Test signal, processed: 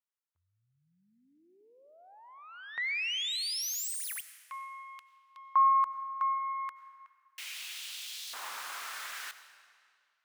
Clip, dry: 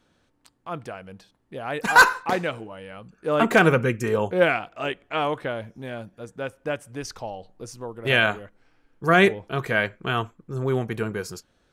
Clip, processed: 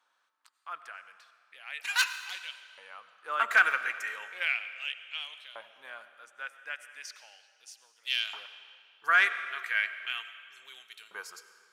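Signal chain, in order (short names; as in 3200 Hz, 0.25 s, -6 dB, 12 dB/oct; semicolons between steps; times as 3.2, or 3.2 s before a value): tracing distortion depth 0.035 ms; LFO high-pass saw up 0.36 Hz 990–3800 Hz; digital reverb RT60 2.1 s, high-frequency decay 0.9×, pre-delay 55 ms, DRR 11.5 dB; gain -8 dB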